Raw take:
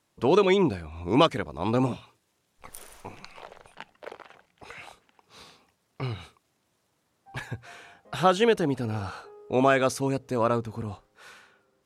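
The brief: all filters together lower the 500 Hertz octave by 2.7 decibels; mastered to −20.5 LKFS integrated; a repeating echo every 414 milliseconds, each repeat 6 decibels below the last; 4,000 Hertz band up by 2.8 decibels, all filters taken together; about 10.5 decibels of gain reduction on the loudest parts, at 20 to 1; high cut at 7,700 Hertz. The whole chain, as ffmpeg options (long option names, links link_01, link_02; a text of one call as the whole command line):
ffmpeg -i in.wav -af "lowpass=7700,equalizer=frequency=500:width_type=o:gain=-3.5,equalizer=frequency=4000:width_type=o:gain=4,acompressor=threshold=-26dB:ratio=20,aecho=1:1:414|828|1242|1656|2070|2484:0.501|0.251|0.125|0.0626|0.0313|0.0157,volume=14dB" out.wav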